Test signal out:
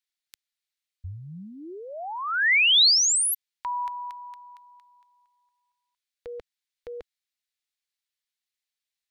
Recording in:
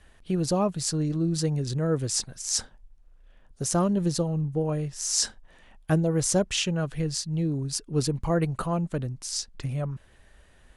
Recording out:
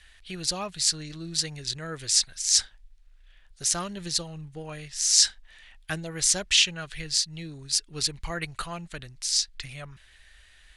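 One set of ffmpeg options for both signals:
-af "equalizer=f=125:t=o:w=1:g=-11,equalizer=f=250:t=o:w=1:g=-12,equalizer=f=500:t=o:w=1:g=-9,equalizer=f=1k:t=o:w=1:g=-5,equalizer=f=2k:t=o:w=1:g=7,equalizer=f=4k:t=o:w=1:g=9,equalizer=f=8k:t=o:w=1:g=3"

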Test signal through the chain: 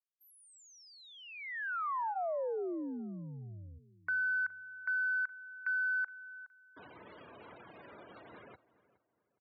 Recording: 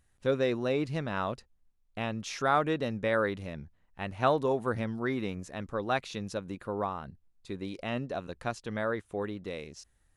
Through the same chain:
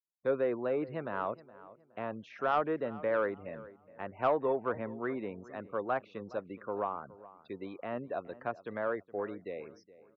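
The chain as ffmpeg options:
-filter_complex "[0:a]lowpass=6.2k,bandreject=f=800:w=25,afftfilt=real='re*gte(hypot(re,im),0.00562)':imag='im*gte(hypot(re,im),0.00562)':win_size=1024:overlap=0.75,acrossover=split=2600[a][b];[b]acompressor=threshold=-50dB:ratio=4:attack=1:release=60[c];[a][c]amix=inputs=2:normalize=0,highpass=f=88:w=0.5412,highpass=f=88:w=1.3066,bass=f=250:g=-12,treble=f=4k:g=-11,acrossover=split=360|1800[d][e][f];[f]acompressor=threshold=-57dB:ratio=5[g];[d][e][g]amix=inputs=3:normalize=0,asoftclip=type=tanh:threshold=-18dB,asplit=2[h][i];[i]adelay=418,lowpass=f=2.1k:p=1,volume=-18dB,asplit=2[j][k];[k]adelay=418,lowpass=f=2.1k:p=1,volume=0.34,asplit=2[l][m];[m]adelay=418,lowpass=f=2.1k:p=1,volume=0.34[n];[j][l][n]amix=inputs=3:normalize=0[o];[h][o]amix=inputs=2:normalize=0"

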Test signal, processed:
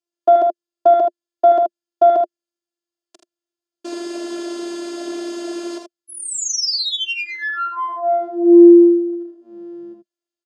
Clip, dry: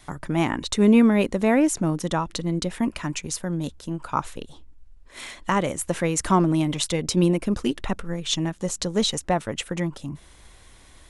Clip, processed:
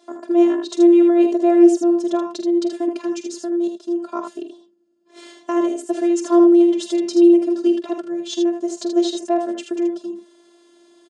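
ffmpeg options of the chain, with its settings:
-filter_complex "[0:a]equalizer=f=450:t=o:w=1.2:g=5.5,afftfilt=real='hypot(re,im)*cos(PI*b)':imag='0':win_size=512:overlap=0.75,aeval=exprs='0.473*(cos(1*acos(clip(val(0)/0.473,-1,1)))-cos(1*PI/2))+0.0473*(cos(2*acos(clip(val(0)/0.473,-1,1)))-cos(2*PI/2))+0.0106*(cos(5*acos(clip(val(0)/0.473,-1,1)))-cos(5*PI/2))':c=same,highpass=f=200:w=0.5412,highpass=f=200:w=1.3066,equalizer=f=210:t=q:w=4:g=7,equalizer=f=350:t=q:w=4:g=9,equalizer=f=620:t=q:w=4:g=9,equalizer=f=2.1k:t=q:w=4:g=-9,equalizer=f=5k:t=q:w=4:g=3,lowpass=f=8k:w=0.5412,lowpass=f=8k:w=1.3066,asplit=2[a][b];[b]aecho=0:1:46|79:0.266|0.473[c];[a][c]amix=inputs=2:normalize=0,volume=-3dB"

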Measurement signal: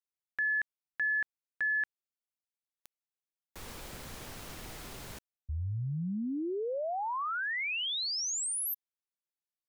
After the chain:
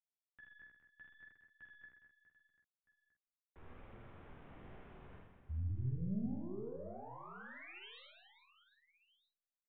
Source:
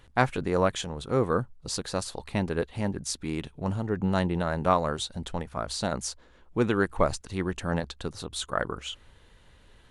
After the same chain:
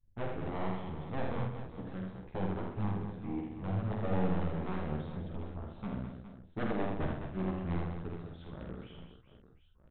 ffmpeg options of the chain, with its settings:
-filter_complex "[0:a]lowpass=2.2k,anlmdn=0.00398,lowshelf=f=270:g=3.5,acrossover=split=380[a][b];[b]acompressor=threshold=-42dB:ratio=6:attack=0.16:release=56[c];[a][c]amix=inputs=2:normalize=0,aeval=exprs='0.251*(cos(1*acos(clip(val(0)/0.251,-1,1)))-cos(1*PI/2))+0.0447*(cos(2*acos(clip(val(0)/0.251,-1,1)))-cos(2*PI/2))+0.00178*(cos(6*acos(clip(val(0)/0.251,-1,1)))-cos(6*PI/2))+0.0251*(cos(7*acos(clip(val(0)/0.251,-1,1)))-cos(7*PI/2))':c=same,aresample=8000,aeval=exprs='0.0501*(abs(mod(val(0)/0.0501+3,4)-2)-1)':c=same,aresample=44100,flanger=delay=8.2:depth=8.6:regen=-3:speed=0.75:shape=triangular,asplit=2[d][e];[e]adelay=48,volume=-5dB[f];[d][f]amix=inputs=2:normalize=0,aecho=1:1:80|208|412.8|740.5|1265:0.631|0.398|0.251|0.158|0.1"

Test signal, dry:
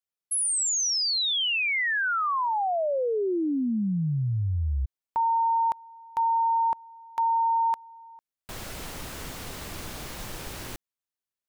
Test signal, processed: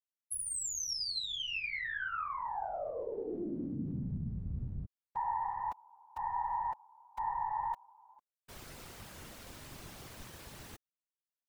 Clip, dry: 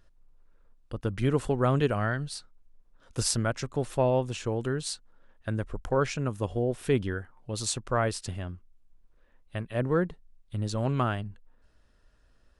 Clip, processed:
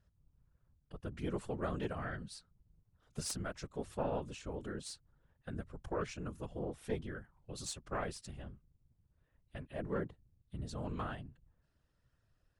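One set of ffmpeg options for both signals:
-af "aeval=exprs='0.398*(cos(1*acos(clip(val(0)/0.398,-1,1)))-cos(1*PI/2))+0.178*(cos(2*acos(clip(val(0)/0.398,-1,1)))-cos(2*PI/2))+0.0126*(cos(4*acos(clip(val(0)/0.398,-1,1)))-cos(4*PI/2))':c=same,afftfilt=real='hypot(re,im)*cos(2*PI*random(0))':imag='hypot(re,im)*sin(2*PI*random(1))':win_size=512:overlap=0.75,volume=-6dB"

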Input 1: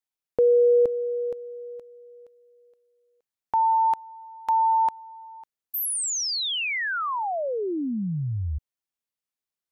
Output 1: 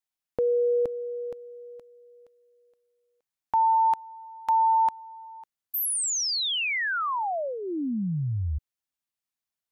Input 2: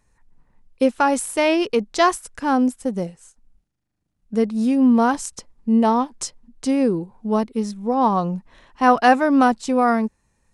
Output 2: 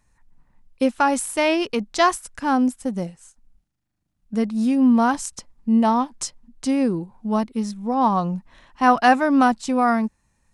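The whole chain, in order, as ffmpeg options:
-af "equalizer=f=440:t=o:w=0.56:g=-7"

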